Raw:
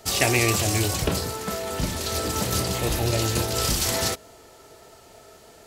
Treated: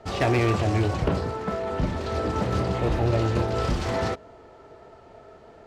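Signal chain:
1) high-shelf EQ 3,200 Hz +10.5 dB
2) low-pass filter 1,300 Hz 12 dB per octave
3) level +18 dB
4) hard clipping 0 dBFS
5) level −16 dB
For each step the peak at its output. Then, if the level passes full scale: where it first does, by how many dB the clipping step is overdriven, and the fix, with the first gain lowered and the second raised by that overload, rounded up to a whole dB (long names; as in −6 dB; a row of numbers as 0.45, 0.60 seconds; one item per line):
−1.0, −9.0, +9.0, 0.0, −16.0 dBFS
step 3, 9.0 dB
step 3 +9 dB, step 5 −7 dB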